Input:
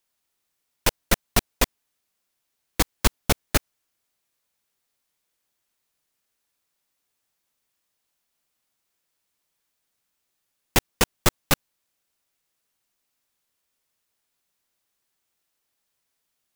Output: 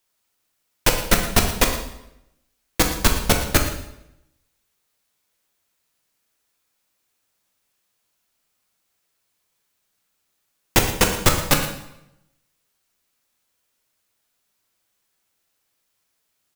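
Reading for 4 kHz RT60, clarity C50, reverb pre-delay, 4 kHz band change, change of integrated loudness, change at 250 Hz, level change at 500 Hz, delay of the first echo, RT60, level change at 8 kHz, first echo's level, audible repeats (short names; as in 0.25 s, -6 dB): 0.70 s, 6.0 dB, 7 ms, +4.5 dB, +4.5 dB, +5.0 dB, +5.0 dB, 0.115 s, 0.85 s, +5.0 dB, -14.0 dB, 1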